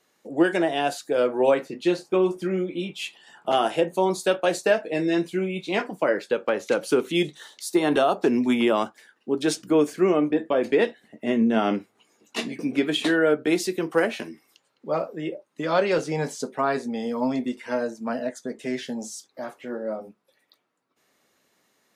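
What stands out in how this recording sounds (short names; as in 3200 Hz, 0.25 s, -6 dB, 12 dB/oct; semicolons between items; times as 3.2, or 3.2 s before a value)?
noise floor -69 dBFS; spectral tilt -4.0 dB/oct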